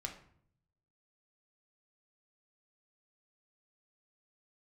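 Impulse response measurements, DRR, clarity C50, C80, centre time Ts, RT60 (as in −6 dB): 2.0 dB, 9.0 dB, 13.0 dB, 17 ms, 0.60 s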